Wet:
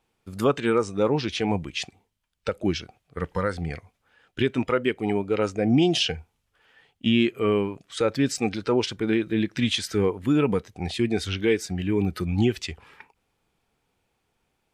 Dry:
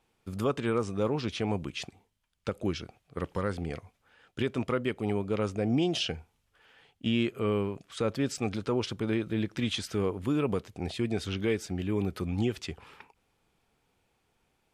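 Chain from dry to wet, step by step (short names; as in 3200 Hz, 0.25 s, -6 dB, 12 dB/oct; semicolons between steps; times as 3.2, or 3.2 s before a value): spectral noise reduction 8 dB; gain +7.5 dB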